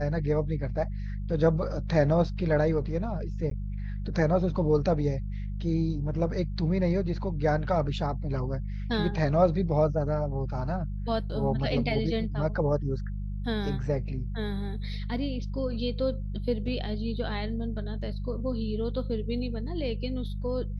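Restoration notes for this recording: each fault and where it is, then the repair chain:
hum 50 Hz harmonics 4 -33 dBFS
3.5–3.51 gap 13 ms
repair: de-hum 50 Hz, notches 4; interpolate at 3.5, 13 ms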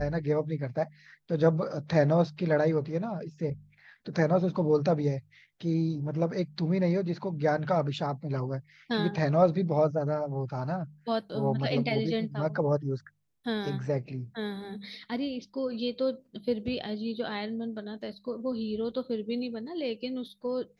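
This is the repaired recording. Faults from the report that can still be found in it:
none

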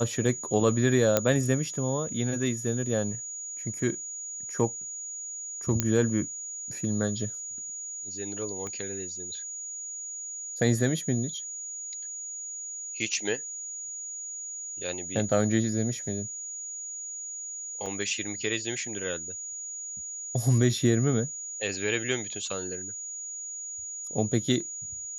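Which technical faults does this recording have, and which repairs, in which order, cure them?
tone 6800 Hz -35 dBFS
1.17 pop -6 dBFS
5.8 pop -8 dBFS
8.67 pop -24 dBFS
17.86 gap 3.4 ms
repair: de-click; notch 6800 Hz, Q 30; interpolate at 17.86, 3.4 ms

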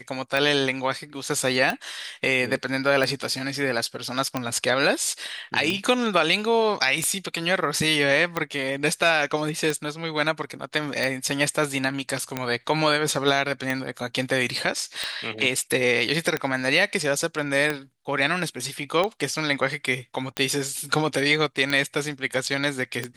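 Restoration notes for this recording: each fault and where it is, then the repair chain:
tick 45 rpm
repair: de-click

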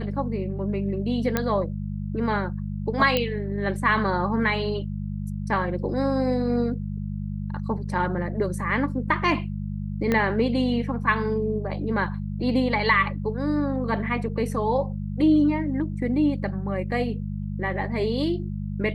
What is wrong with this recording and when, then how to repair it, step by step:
hum 50 Hz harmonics 4 -30 dBFS
1.37 pop -8 dBFS
3.17 pop -9 dBFS
10.12 pop -11 dBFS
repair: de-click; de-hum 50 Hz, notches 4

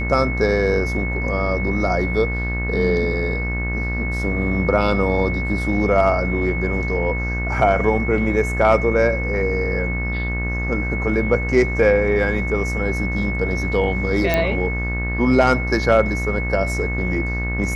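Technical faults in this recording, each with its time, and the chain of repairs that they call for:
buzz 60 Hz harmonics 38 -24 dBFS
tone 2200 Hz -26 dBFS
14.34 pop -5 dBFS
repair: de-click; notch 2200 Hz, Q 30; de-hum 60 Hz, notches 38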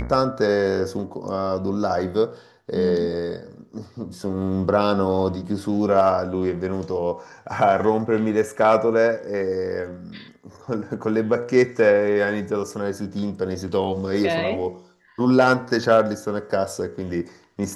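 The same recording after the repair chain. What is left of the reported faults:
none

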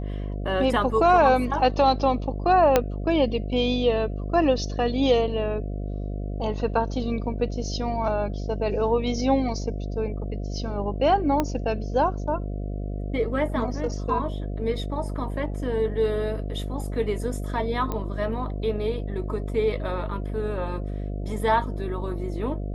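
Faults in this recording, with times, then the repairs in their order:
buzz 50 Hz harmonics 14 -30 dBFS
2.76 pop -4 dBFS
11.4 pop -10 dBFS
17.92 pop -16 dBFS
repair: de-click; de-hum 50 Hz, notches 14

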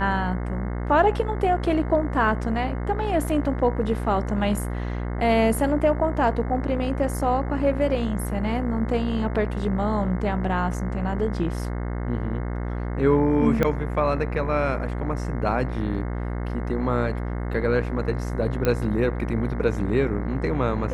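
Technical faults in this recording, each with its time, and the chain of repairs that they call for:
buzz 60 Hz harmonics 36 -28 dBFS
13.63 pop -10 dBFS
18.65 pop -10 dBFS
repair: de-click; de-hum 60 Hz, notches 36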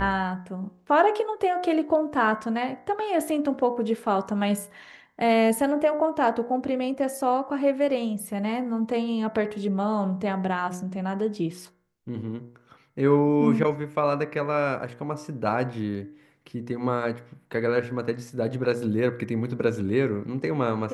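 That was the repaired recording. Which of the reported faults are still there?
none

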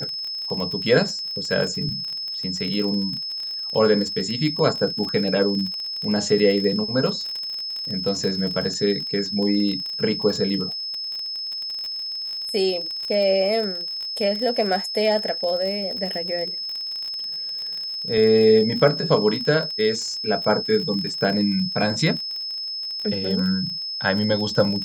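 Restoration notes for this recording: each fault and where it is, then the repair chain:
crackle 32/s -27 dBFS
tone 5200 Hz -27 dBFS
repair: de-click; notch 5200 Hz, Q 30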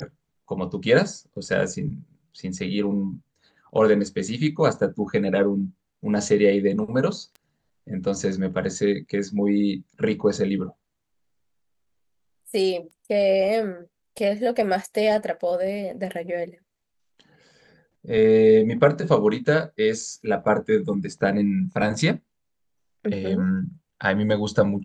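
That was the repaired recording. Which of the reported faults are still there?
none

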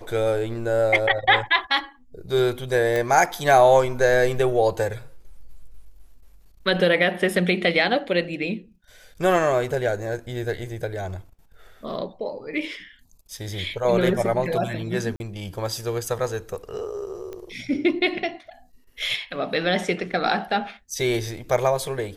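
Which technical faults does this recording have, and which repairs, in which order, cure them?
2.96 pop
15.16–15.2 gap 41 ms
17.33 pop -23 dBFS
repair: de-click; interpolate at 15.16, 41 ms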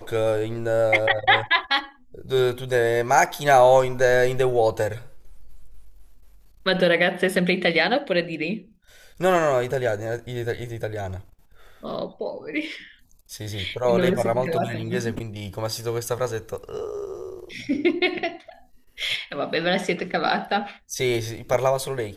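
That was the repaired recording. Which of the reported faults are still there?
none

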